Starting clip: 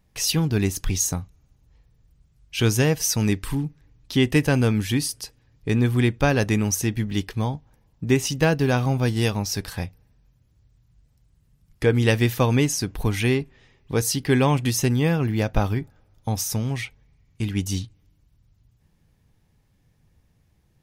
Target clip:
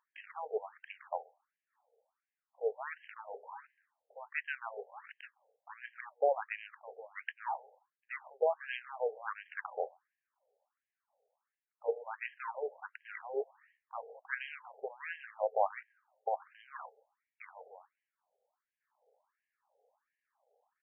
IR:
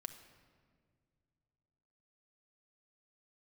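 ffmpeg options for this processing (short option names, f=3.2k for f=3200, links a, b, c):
-filter_complex "[0:a]bandreject=f=50:t=h:w=6,bandreject=f=100:t=h:w=6,bandreject=f=150:t=h:w=6,bandreject=f=200:t=h:w=6,bandreject=f=250:t=h:w=6,areverse,acompressor=threshold=-31dB:ratio=16,areverse,asplit=2[a][b];[b]adelay=130,highpass=300,lowpass=3.4k,asoftclip=type=hard:threshold=-31dB,volume=-23dB[c];[a][c]amix=inputs=2:normalize=0,adynamicsmooth=sensitivity=5:basefreq=630,afftfilt=real='re*between(b*sr/1024,580*pow(2300/580,0.5+0.5*sin(2*PI*1.4*pts/sr))/1.41,580*pow(2300/580,0.5+0.5*sin(2*PI*1.4*pts/sr))*1.41)':imag='im*between(b*sr/1024,580*pow(2300/580,0.5+0.5*sin(2*PI*1.4*pts/sr))/1.41,580*pow(2300/580,0.5+0.5*sin(2*PI*1.4*pts/sr))*1.41)':win_size=1024:overlap=0.75,volume=12dB"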